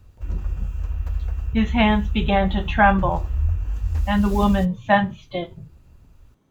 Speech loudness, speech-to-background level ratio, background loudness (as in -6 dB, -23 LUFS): -21.0 LUFS, 7.0 dB, -28.0 LUFS